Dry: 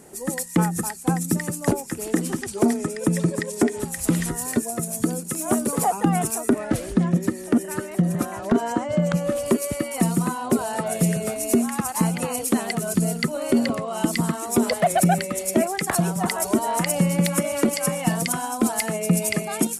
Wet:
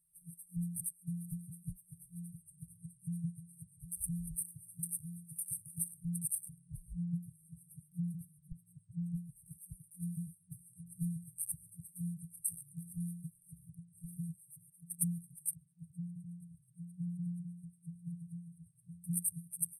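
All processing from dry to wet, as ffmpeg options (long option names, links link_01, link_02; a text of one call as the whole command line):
ffmpeg -i in.wav -filter_complex "[0:a]asettb=1/sr,asplit=3[link_01][link_02][link_03];[link_01]atrim=end=14.384[link_04];[link_02]atrim=start=14.38:end=14.99,asetpts=PTS-STARTPTS,afade=type=in:duration=0.004:curve=qsin,afade=type=out:start_time=0.606:duration=0.004:curve=qsin,highpass=frequency=66:width=0.5412,highpass=frequency=66:width=1.3066,aecho=1:1:6.4:0.49,atrim=end_sample=26901,acompressor=threshold=-26dB:ratio=4:attack=3.2:release=140:knee=1:detection=peak[link_05];[link_03]atrim=start=14.986[link_06];[link_04][link_05]acrossfade=duration=0.004:curve1=hsin:curve2=qsin[link_07];[link_07][link_06]acrossfade=duration=0.004:curve1=qsin:curve2=hsin,asettb=1/sr,asplit=3[link_08][link_09][link_10];[link_08]atrim=end=15.554[link_11];[link_09]atrim=start=15.55:end=19.04,asetpts=PTS-STARTPTS,afade=type=in:duration=0.004:curve=qsin,afade=type=out:start_time=3.486:duration=0.004:curve=qsin,acrusher=bits=7:mix=0:aa=0.5,highpass=160,lowpass=3500,aecho=1:1:257:0.596,atrim=end_sample=153909[link_12];[link_10]atrim=start=19.036[link_13];[link_11][link_12]acrossfade=duration=0.004:curve1=hsin:curve2=qsin[link_14];[link_14][link_13]acrossfade=duration=0.004:curve1=qsin:curve2=hsin,equalizer=frequency=110:width=0.68:gain=-13,afwtdn=0.0224,afftfilt=real='re*(1-between(b*sr/4096,180,8300))':imag='im*(1-between(b*sr/4096,180,8300))':win_size=4096:overlap=0.75,volume=-5dB" out.wav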